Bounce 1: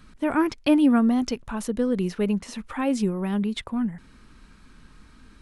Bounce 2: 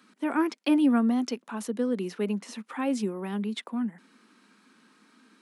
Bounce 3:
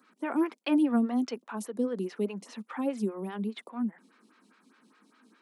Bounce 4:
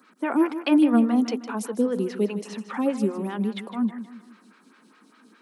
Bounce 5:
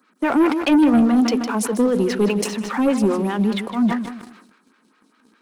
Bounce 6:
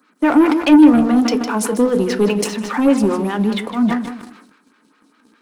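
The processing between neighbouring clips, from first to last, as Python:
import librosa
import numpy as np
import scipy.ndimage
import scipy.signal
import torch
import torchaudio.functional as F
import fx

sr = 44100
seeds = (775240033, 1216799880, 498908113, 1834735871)

y1 = scipy.signal.sosfilt(scipy.signal.butter(8, 200.0, 'highpass', fs=sr, output='sos'), x)
y1 = fx.notch(y1, sr, hz=600.0, q=18.0)
y1 = y1 * librosa.db_to_amplitude(-3.5)
y2 = fx.stagger_phaser(y1, sr, hz=4.9)
y3 = fx.echo_feedback(y2, sr, ms=156, feedback_pct=41, wet_db=-12.0)
y3 = y3 * librosa.db_to_amplitude(6.5)
y4 = fx.leveller(y3, sr, passes=2)
y4 = fx.sustainer(y4, sr, db_per_s=66.0)
y5 = fx.rev_fdn(y4, sr, rt60_s=0.38, lf_ratio=1.0, hf_ratio=0.55, size_ms=20.0, drr_db=10.0)
y5 = y5 * librosa.db_to_amplitude(2.5)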